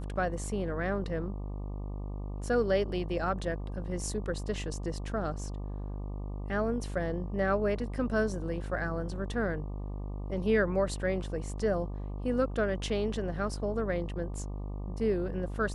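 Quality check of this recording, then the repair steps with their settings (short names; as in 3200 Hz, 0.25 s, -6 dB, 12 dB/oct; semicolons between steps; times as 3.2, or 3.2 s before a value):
buzz 50 Hz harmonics 24 -37 dBFS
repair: de-hum 50 Hz, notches 24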